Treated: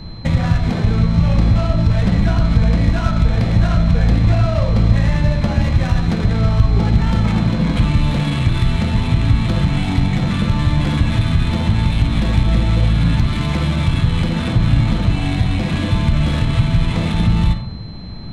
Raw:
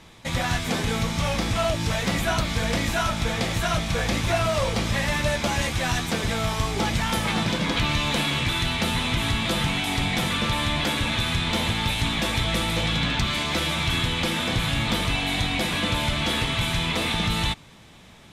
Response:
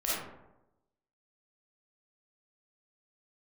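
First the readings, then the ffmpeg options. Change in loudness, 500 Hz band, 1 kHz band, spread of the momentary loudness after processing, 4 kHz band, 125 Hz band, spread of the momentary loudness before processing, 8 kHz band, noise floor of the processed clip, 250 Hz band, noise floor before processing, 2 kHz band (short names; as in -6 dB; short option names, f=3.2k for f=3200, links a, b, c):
+7.5 dB, +2.0 dB, 0.0 dB, 3 LU, -4.5 dB, +13.5 dB, 2 LU, n/a, -26 dBFS, +9.5 dB, -48 dBFS, -2.5 dB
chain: -filter_complex "[0:a]acompressor=threshold=-30dB:ratio=10,highshelf=f=9.9k:g=-11.5,asplit=2[a][b];[1:a]atrim=start_sample=2205[c];[b][c]afir=irnorm=-1:irlink=0,volume=-9dB[d];[a][d]amix=inputs=2:normalize=0,adynamicsmooth=sensitivity=2:basefreq=1.6k,aeval=exprs='val(0)+0.00282*sin(2*PI*4100*n/s)':c=same,bass=f=250:g=14,treble=f=4k:g=8,volume=6dB"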